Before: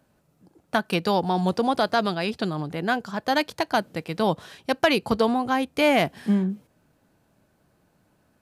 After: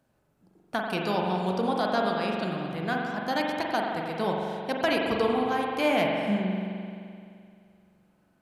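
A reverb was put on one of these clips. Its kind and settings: spring tank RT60 2.4 s, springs 43 ms, chirp 75 ms, DRR -1 dB; gain -7 dB

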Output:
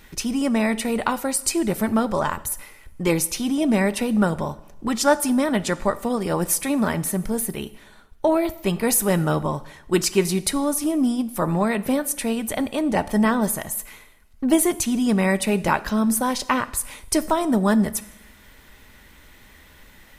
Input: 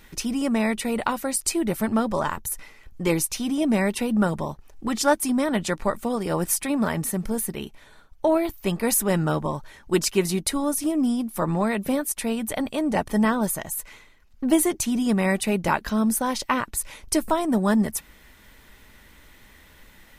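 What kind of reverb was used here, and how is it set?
two-slope reverb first 0.85 s, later 2.3 s, from -25 dB, DRR 14.5 dB; gain +2 dB

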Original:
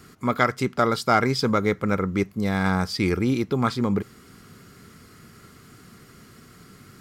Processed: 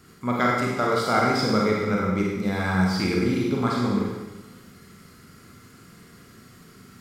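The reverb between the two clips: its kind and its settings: Schroeder reverb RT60 1.2 s, combs from 33 ms, DRR -3 dB; gain -5 dB

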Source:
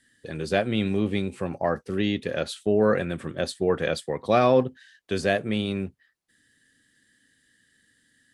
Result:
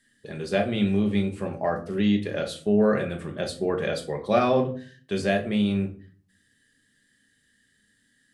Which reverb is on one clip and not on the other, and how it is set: shoebox room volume 330 m³, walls furnished, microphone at 1.3 m; gain -3 dB

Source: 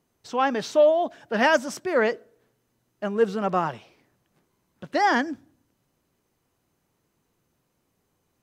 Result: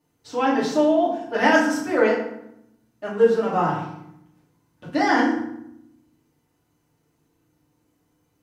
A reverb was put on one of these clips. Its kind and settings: FDN reverb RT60 0.77 s, low-frequency decay 1.55×, high-frequency decay 0.7×, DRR -7.5 dB; gain -6 dB

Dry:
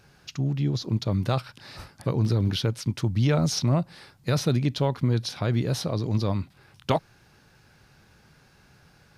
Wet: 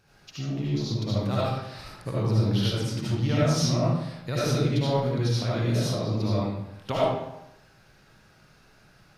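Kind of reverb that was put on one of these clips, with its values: digital reverb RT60 0.87 s, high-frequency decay 0.75×, pre-delay 35 ms, DRR -8 dB; gain -7.5 dB

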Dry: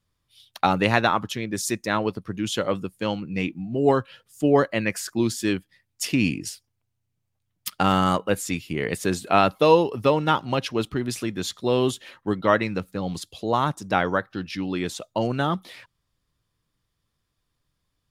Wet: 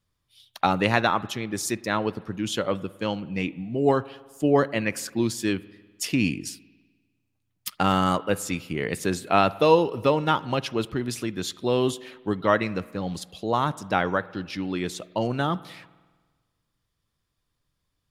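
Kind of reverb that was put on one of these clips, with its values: spring tank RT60 1.4 s, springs 50 ms, chirp 30 ms, DRR 19 dB; gain -1.5 dB

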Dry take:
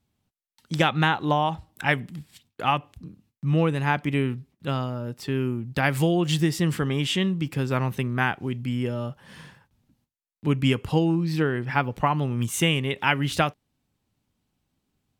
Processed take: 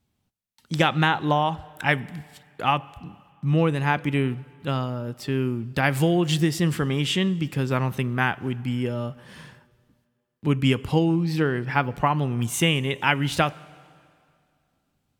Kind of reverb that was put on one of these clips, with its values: plate-style reverb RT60 2.3 s, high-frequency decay 0.9×, DRR 20 dB; gain +1 dB

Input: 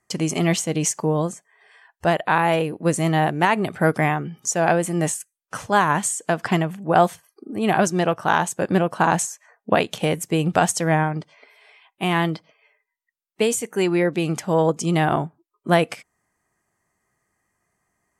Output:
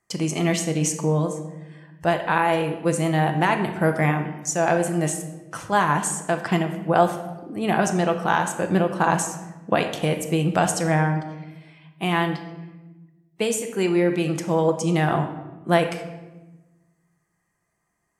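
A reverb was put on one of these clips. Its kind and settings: shoebox room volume 640 m³, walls mixed, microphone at 0.75 m; gain -3 dB

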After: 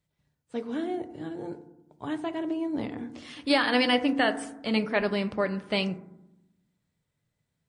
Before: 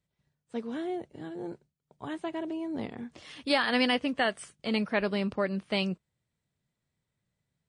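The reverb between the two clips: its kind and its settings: FDN reverb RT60 0.87 s, low-frequency decay 1.55×, high-frequency decay 0.3×, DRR 9 dB; gain +2 dB

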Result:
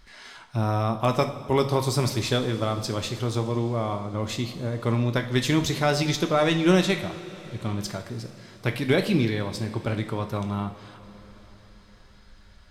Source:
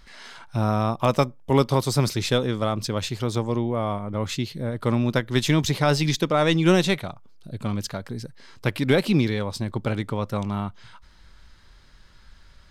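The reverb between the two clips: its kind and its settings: two-slope reverb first 0.51 s, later 4.9 s, from -16 dB, DRR 5 dB; gain -2.5 dB

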